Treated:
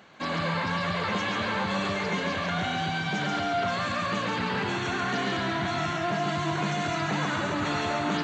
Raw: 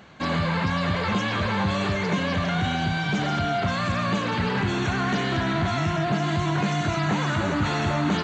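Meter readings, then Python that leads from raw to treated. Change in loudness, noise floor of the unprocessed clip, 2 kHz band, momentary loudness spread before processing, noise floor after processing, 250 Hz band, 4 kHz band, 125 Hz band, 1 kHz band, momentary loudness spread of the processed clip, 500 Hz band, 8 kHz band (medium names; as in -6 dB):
-3.5 dB, -26 dBFS, -1.5 dB, 1 LU, -31 dBFS, -5.5 dB, -1.5 dB, -8.0 dB, -1.5 dB, 1 LU, -2.5 dB, -1.5 dB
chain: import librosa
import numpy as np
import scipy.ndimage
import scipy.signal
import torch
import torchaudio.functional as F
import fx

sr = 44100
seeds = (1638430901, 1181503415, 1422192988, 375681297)

p1 = fx.highpass(x, sr, hz=270.0, slope=6)
p2 = p1 + fx.echo_single(p1, sr, ms=139, db=-4.0, dry=0)
y = p2 * 10.0 ** (-3.0 / 20.0)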